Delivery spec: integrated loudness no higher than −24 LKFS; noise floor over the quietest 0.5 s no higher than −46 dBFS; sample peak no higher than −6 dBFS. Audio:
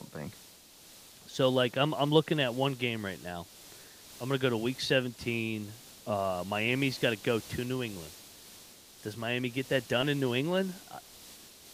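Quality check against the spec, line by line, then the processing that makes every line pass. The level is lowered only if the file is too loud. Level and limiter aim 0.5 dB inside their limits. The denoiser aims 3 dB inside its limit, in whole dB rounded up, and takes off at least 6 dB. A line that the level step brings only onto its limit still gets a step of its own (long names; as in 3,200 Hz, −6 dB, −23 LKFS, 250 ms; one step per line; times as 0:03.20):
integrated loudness −31.0 LKFS: in spec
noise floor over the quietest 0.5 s −55 dBFS: in spec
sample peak −9.5 dBFS: in spec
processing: no processing needed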